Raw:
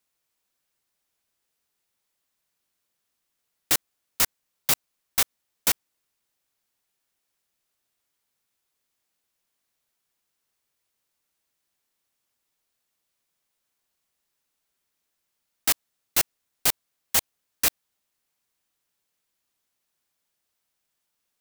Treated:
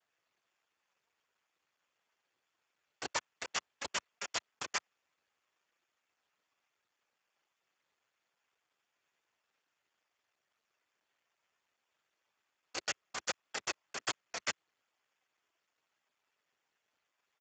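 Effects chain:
speed change +23%
first difference
single-tap delay 128 ms −8.5 dB
harmonic generator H 5 −19 dB, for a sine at −5 dBFS
low-pass filter 1,400 Hz 12 dB per octave
compressor whose output falls as the input rises −48 dBFS, ratio −0.5
cochlear-implant simulation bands 4
high-pass filter 210 Hz 24 dB per octave
level +18 dB
Speex 8 kbit/s 16,000 Hz

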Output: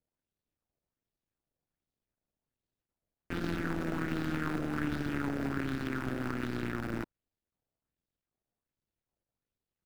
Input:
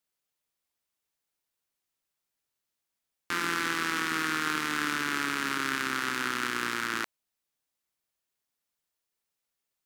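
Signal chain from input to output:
running median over 41 samples
low-shelf EQ 260 Hz +10.5 dB
auto-filter bell 1.3 Hz 580–4,300 Hz +7 dB

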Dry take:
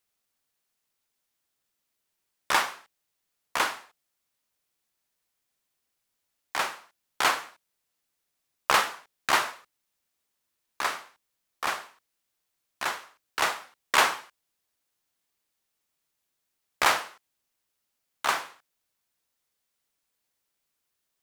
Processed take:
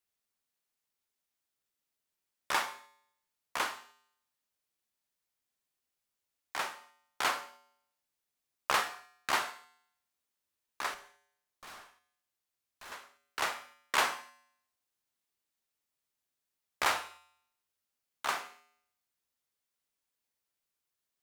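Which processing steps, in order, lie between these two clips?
0:10.94–0:12.92: tube saturation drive 40 dB, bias 0.35
tuned comb filter 81 Hz, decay 0.73 s, harmonics odd, mix 60%

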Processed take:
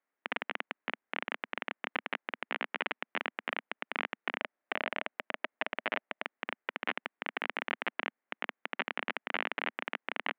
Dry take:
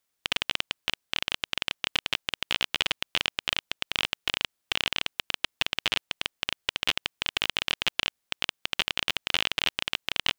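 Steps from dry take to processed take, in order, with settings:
elliptic band-pass filter 230–2,000 Hz, stop band 80 dB
0:04.40–0:06.24: parametric band 620 Hz +6 dB 0.34 octaves

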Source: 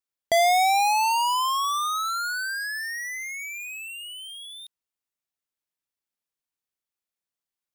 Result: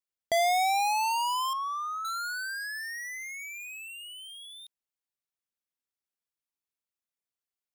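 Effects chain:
0:01.53–0:02.05: moving average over 11 samples
level −5.5 dB

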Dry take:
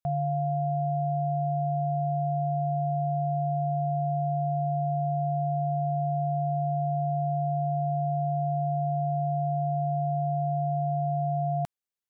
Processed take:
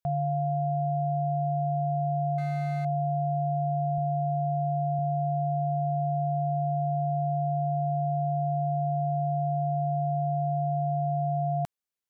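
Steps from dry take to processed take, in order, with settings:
0:02.38–0:02.85: running median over 41 samples
0:03.98–0:04.99: high-pass filter 61 Hz

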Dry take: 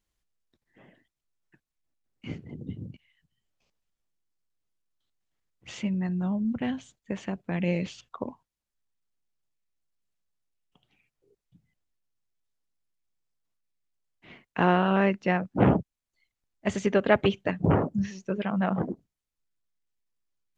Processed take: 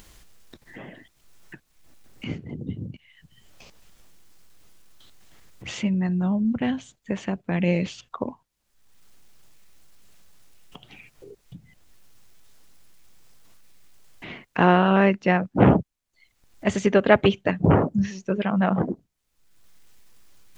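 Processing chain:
upward compression, threshold −35 dBFS
level +5 dB

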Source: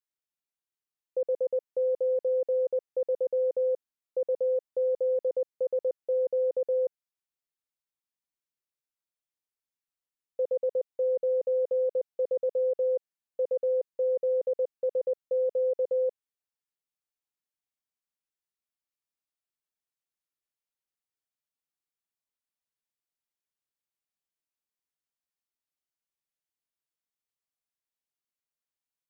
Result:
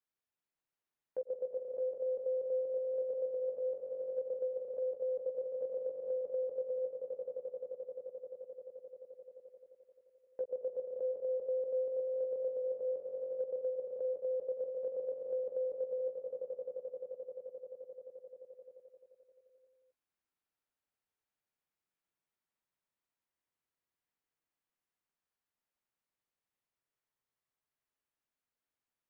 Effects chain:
output level in coarse steps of 13 dB
echo that builds up and dies away 87 ms, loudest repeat 5, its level −10 dB
multiband upward and downward compressor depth 70%
level −8.5 dB

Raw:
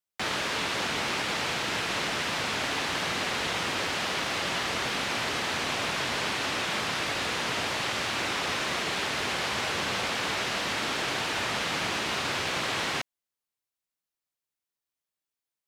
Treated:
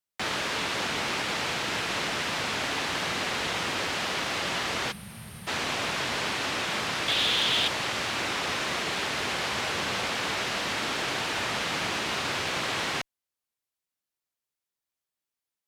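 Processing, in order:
0:04.92–0:05.47: gain on a spectral selection 230–8,400 Hz −19 dB
0:07.08–0:07.68: parametric band 3,400 Hz +14 dB 0.55 octaves
asymmetric clip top −20 dBFS

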